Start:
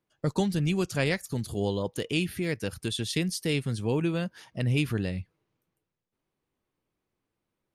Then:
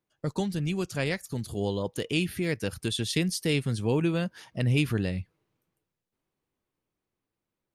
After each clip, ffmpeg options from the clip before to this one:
ffmpeg -i in.wav -af "dynaudnorm=framelen=210:gausssize=17:maxgain=4.5dB,volume=-3dB" out.wav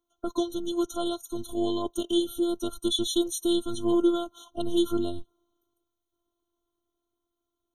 ffmpeg -i in.wav -af "afftfilt=real='hypot(re,im)*cos(PI*b)':imag='0':win_size=512:overlap=0.75,afftfilt=real='re*eq(mod(floor(b*sr/1024/1400),2),0)':imag='im*eq(mod(floor(b*sr/1024/1400),2),0)':win_size=1024:overlap=0.75,volume=7dB" out.wav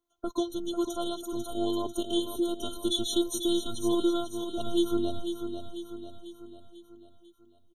ffmpeg -i in.wav -af "aecho=1:1:495|990|1485|1980|2475|2970:0.398|0.207|0.108|0.056|0.0291|0.0151,volume=-2dB" out.wav

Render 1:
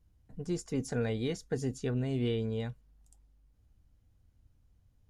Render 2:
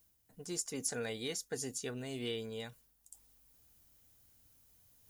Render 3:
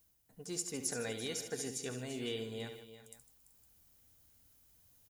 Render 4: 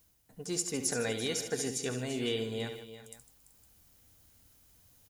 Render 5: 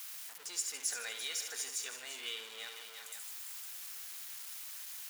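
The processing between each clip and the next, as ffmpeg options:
ffmpeg -i in.wav -af "aemphasis=mode=production:type=riaa,areverse,acompressor=mode=upward:threshold=-53dB:ratio=2.5,areverse,volume=-3dB" out.wav
ffmpeg -i in.wav -af "aecho=1:1:71|153|339|381|510:0.335|0.2|0.2|0.112|0.119,volume=-1dB" out.wav
ffmpeg -i in.wav -af "highshelf=frequency=11000:gain=-5,volume=6.5dB" out.wav
ffmpeg -i in.wav -af "aeval=exprs='val(0)+0.5*0.0178*sgn(val(0))':channel_layout=same,highpass=1300,volume=-4.5dB" out.wav

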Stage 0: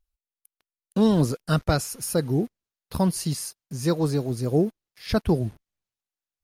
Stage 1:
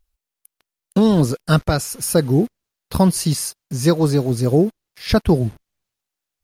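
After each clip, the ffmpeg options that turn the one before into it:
ffmpeg -i in.wav -af "alimiter=limit=-13.5dB:level=0:latency=1:release=497,volume=8.5dB" out.wav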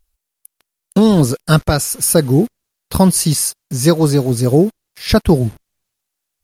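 ffmpeg -i in.wav -af "equalizer=frequency=11000:width=0.64:gain=5.5,volume=3.5dB" out.wav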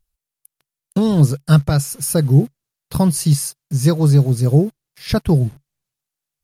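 ffmpeg -i in.wav -af "equalizer=frequency=140:width_type=o:width=0.43:gain=13,volume=-7dB" out.wav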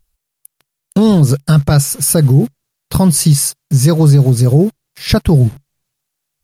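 ffmpeg -i in.wav -af "alimiter=level_in=10dB:limit=-1dB:release=50:level=0:latency=1,volume=-1dB" out.wav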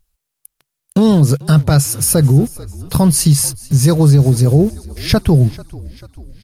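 ffmpeg -i in.wav -filter_complex "[0:a]asplit=6[link_01][link_02][link_03][link_04][link_05][link_06];[link_02]adelay=441,afreqshift=-49,volume=-20dB[link_07];[link_03]adelay=882,afreqshift=-98,volume=-24.9dB[link_08];[link_04]adelay=1323,afreqshift=-147,volume=-29.8dB[link_09];[link_05]adelay=1764,afreqshift=-196,volume=-34.6dB[link_10];[link_06]adelay=2205,afreqshift=-245,volume=-39.5dB[link_11];[link_01][link_07][link_08][link_09][link_10][link_11]amix=inputs=6:normalize=0,volume=-1dB" out.wav

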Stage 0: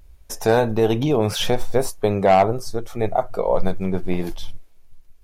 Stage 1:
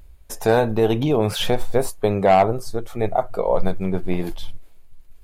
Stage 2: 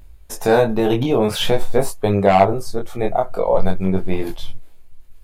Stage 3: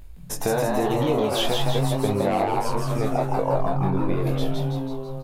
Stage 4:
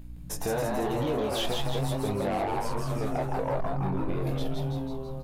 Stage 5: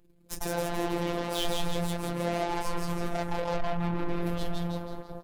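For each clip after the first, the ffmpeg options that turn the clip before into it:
ffmpeg -i in.wav -af "equalizer=frequency=5700:width=4.3:gain=-7,areverse,acompressor=mode=upward:threshold=-34dB:ratio=2.5,areverse" out.wav
ffmpeg -i in.wav -af "flanger=delay=20:depth=3.8:speed=0.46,volume=5.5dB" out.wav
ffmpeg -i in.wav -filter_complex "[0:a]acompressor=threshold=-21dB:ratio=6,asplit=2[link_01][link_02];[link_02]asplit=8[link_03][link_04][link_05][link_06][link_07][link_08][link_09][link_10];[link_03]adelay=164,afreqshift=130,volume=-3dB[link_11];[link_04]adelay=328,afreqshift=260,volume=-7.9dB[link_12];[link_05]adelay=492,afreqshift=390,volume=-12.8dB[link_13];[link_06]adelay=656,afreqshift=520,volume=-17.6dB[link_14];[link_07]adelay=820,afreqshift=650,volume=-22.5dB[link_15];[link_08]adelay=984,afreqshift=780,volume=-27.4dB[link_16];[link_09]adelay=1148,afreqshift=910,volume=-32.3dB[link_17];[link_10]adelay=1312,afreqshift=1040,volume=-37.2dB[link_18];[link_11][link_12][link_13][link_14][link_15][link_16][link_17][link_18]amix=inputs=8:normalize=0[link_19];[link_01][link_19]amix=inputs=2:normalize=0" out.wav
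ffmpeg -i in.wav -af "asoftclip=type=tanh:threshold=-18dB,aeval=exprs='val(0)+0.01*(sin(2*PI*60*n/s)+sin(2*PI*2*60*n/s)/2+sin(2*PI*3*60*n/s)/3+sin(2*PI*4*60*n/s)/4+sin(2*PI*5*60*n/s)/5)':channel_layout=same,volume=-4dB" out.wav
ffmpeg -i in.wav -af "aeval=exprs='0.0891*(cos(1*acos(clip(val(0)/0.0891,-1,1)))-cos(1*PI/2))+0.00224*(cos(5*acos(clip(val(0)/0.0891,-1,1)))-cos(5*PI/2))+0.0178*(cos(7*acos(clip(val(0)/0.0891,-1,1)))-cos(7*PI/2))':channel_layout=same,afftfilt=real='hypot(re,im)*cos(PI*b)':imag='0':win_size=1024:overlap=0.75,volume=1dB" out.wav

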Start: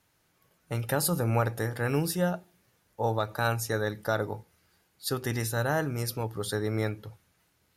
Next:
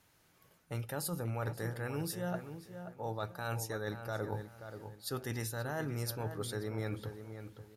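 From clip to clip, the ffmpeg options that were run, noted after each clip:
ffmpeg -i in.wav -filter_complex "[0:a]areverse,acompressor=threshold=-36dB:ratio=10,areverse,asplit=2[link_01][link_02];[link_02]adelay=531,lowpass=frequency=2200:poles=1,volume=-9dB,asplit=2[link_03][link_04];[link_04]adelay=531,lowpass=frequency=2200:poles=1,volume=0.31,asplit=2[link_05][link_06];[link_06]adelay=531,lowpass=frequency=2200:poles=1,volume=0.31,asplit=2[link_07][link_08];[link_08]adelay=531,lowpass=frequency=2200:poles=1,volume=0.31[link_09];[link_01][link_03][link_05][link_07][link_09]amix=inputs=5:normalize=0,volume=1.5dB" out.wav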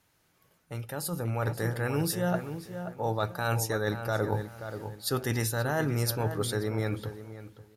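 ffmpeg -i in.wav -af "dynaudnorm=framelen=490:gausssize=5:maxgain=10dB,volume=-1dB" out.wav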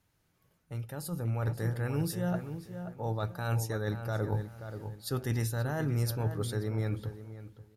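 ffmpeg -i in.wav -af "lowshelf=frequency=220:gain=10,volume=-7.5dB" out.wav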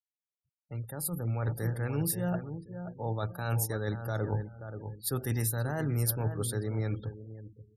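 ffmpeg -i in.wav -filter_complex "[0:a]afftfilt=real='re*gte(hypot(re,im),0.00398)':imag='im*gte(hypot(re,im),0.00398)':win_size=1024:overlap=0.75,acrossover=split=290[link_01][link_02];[link_02]aexciter=amount=2.7:drive=7.5:freq=8400[link_03];[link_01][link_03]amix=inputs=2:normalize=0" out.wav

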